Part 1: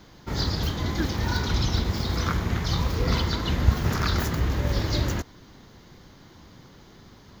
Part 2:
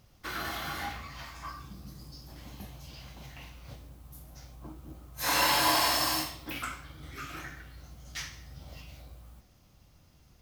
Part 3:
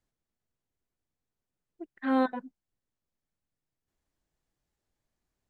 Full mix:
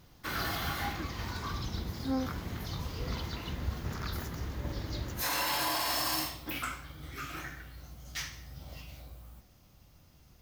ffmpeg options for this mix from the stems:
ffmpeg -i stem1.wav -i stem2.wav -i stem3.wav -filter_complex "[0:a]volume=-13dB[link_01];[1:a]equalizer=frequency=15000:width=6.4:gain=15,volume=0.5dB[link_02];[2:a]aphaser=in_gain=1:out_gain=1:delay=1.1:decay=0.78:speed=1.4:type=triangular,volume=-14dB[link_03];[link_01][link_02][link_03]amix=inputs=3:normalize=0,alimiter=limit=-22dB:level=0:latency=1" out.wav

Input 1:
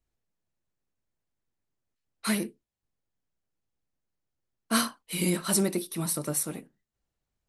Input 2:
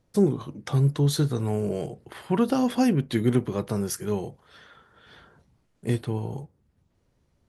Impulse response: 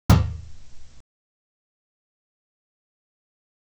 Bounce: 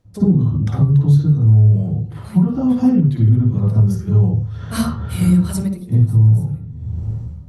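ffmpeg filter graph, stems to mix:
-filter_complex "[0:a]volume=-6.5dB,asplit=3[link_01][link_02][link_03];[link_02]volume=-23.5dB[link_04];[1:a]acompressor=threshold=-27dB:ratio=2,volume=3dB,asplit=2[link_05][link_06];[link_06]volume=-15dB[link_07];[link_03]apad=whole_len=330002[link_08];[link_05][link_08]sidechaincompress=threshold=-46dB:ratio=8:attack=16:release=327[link_09];[2:a]atrim=start_sample=2205[link_10];[link_04][link_07]amix=inputs=2:normalize=0[link_11];[link_11][link_10]afir=irnorm=-1:irlink=0[link_12];[link_01][link_09][link_12]amix=inputs=3:normalize=0,dynaudnorm=framelen=100:gausssize=7:maxgain=13.5dB,alimiter=limit=-5dB:level=0:latency=1:release=341"

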